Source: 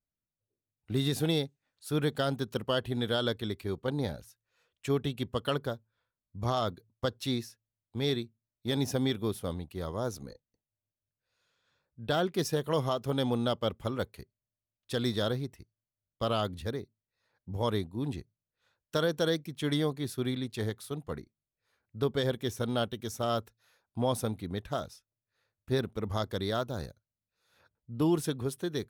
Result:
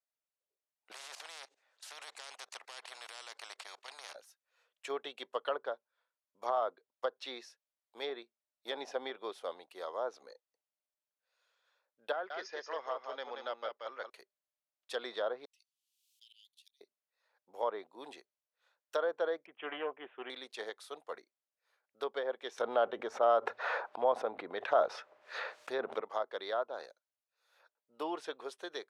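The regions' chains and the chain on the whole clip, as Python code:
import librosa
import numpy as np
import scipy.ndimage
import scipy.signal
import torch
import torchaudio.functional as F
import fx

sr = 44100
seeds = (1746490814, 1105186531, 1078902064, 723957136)

y = fx.chain(x, sr, fx.lowpass(hz=8200.0, slope=12),
    fx.level_steps(step_db=19),
    fx.spectral_comp(ratio=10.0), at=(0.91, 4.15))
y = fx.chain(y, sr, fx.cheby_ripple(hz=6700.0, ripple_db=9),
    fx.echo_single(ms=181, db=-5.5), at=(12.12, 14.1))
y = fx.chain(y, sr, fx.steep_highpass(hz=2800.0, slope=48),
    fx.auto_swell(attack_ms=664.0),
    fx.band_squash(depth_pct=100), at=(15.45, 16.81))
y = fx.chain(y, sr, fx.self_delay(depth_ms=0.14),
    fx.steep_lowpass(hz=3100.0, slope=96), at=(19.46, 20.3))
y = fx.chain(y, sr, fx.peak_eq(hz=68.0, db=11.5, octaves=1.8),
    fx.env_flatten(amount_pct=100), at=(22.58, 26.01))
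y = scipy.signal.sosfilt(scipy.signal.butter(4, 550.0, 'highpass', fs=sr, output='sos'), y)
y = fx.env_lowpass_down(y, sr, base_hz=1400.0, full_db=-31.0)
y = fx.tilt_eq(y, sr, slope=-1.5)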